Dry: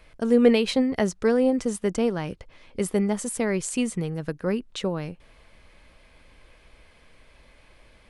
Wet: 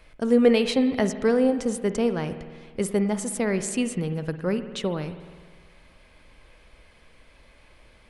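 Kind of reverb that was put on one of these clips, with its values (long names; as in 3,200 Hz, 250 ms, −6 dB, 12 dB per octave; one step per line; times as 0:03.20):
spring reverb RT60 1.6 s, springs 51 ms, chirp 40 ms, DRR 10 dB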